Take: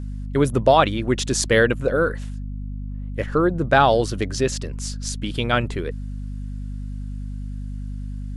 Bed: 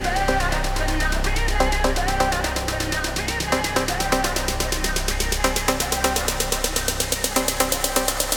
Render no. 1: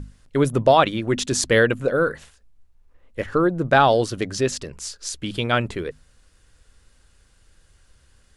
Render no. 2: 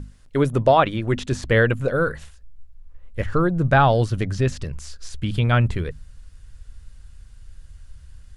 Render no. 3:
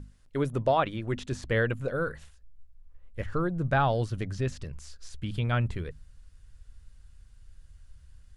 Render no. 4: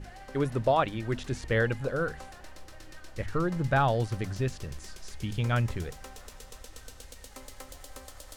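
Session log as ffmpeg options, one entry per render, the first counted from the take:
-af "bandreject=f=50:t=h:w=6,bandreject=f=100:t=h:w=6,bandreject=f=150:t=h:w=6,bandreject=f=200:t=h:w=6,bandreject=f=250:t=h:w=6"
-filter_complex "[0:a]acrossover=split=2900[a][b];[b]acompressor=threshold=-39dB:ratio=4:attack=1:release=60[c];[a][c]amix=inputs=2:normalize=0,asubboost=boost=6:cutoff=140"
-af "volume=-9dB"
-filter_complex "[1:a]volume=-26.5dB[a];[0:a][a]amix=inputs=2:normalize=0"

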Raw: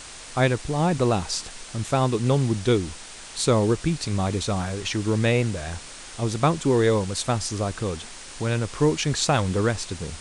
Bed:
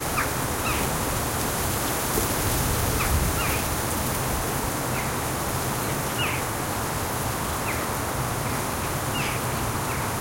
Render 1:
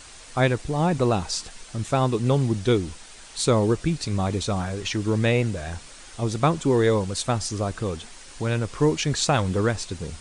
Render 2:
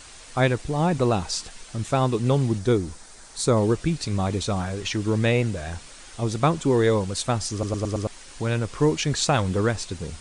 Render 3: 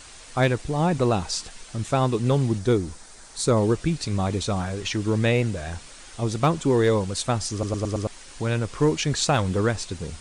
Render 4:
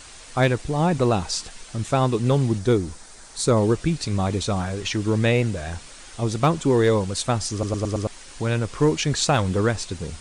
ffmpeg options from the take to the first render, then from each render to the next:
-af "afftdn=nr=6:nf=-41"
-filter_complex "[0:a]asettb=1/sr,asplit=3[a][b][c];[a]atrim=end=2.584[d];[b]atrim=start=2.58:end=3.57,asetpts=PTS-STARTPTS,afade=t=in:d=0.004:c=qsin,afade=t=out:st=0.986:d=0.004:c=qsin,equalizer=f=2.9k:t=o:w=0.84:g=-9[e];[c]atrim=start=3.566[f];[d][e]acrossfade=d=0.004:c1=hsin:c2=qsin[g];[g][f]acrossfade=d=0.004:c1=qsin:c2=hsin,asplit=6[h][i][j][k][l][m];[h]atrim=end=7.632[n];[i]atrim=start=7.518:end=7.632[o];[j]atrim=start=7.518:end=7.632[p];[k]atrim=start=7.518:end=7.632[q];[l]atrim=start=7.518:end=7.632[r];[m]atrim=start=8.068[s];[n][o]acrossfade=d=0.004:c1=hsin:c2=hsin[t];[t][p]acrossfade=d=0.004:c1=hsin:c2=hsin[u];[u][q]acrossfade=d=0.004:c1=hsin:c2=hsin[v];[v][r]acrossfade=d=0.004:c1=hsin:c2=hsin[w];[w][s]acrossfade=d=0.004:c1=hsin:c2=hsin"
-af "volume=12dB,asoftclip=hard,volume=-12dB"
-af "volume=1.5dB"

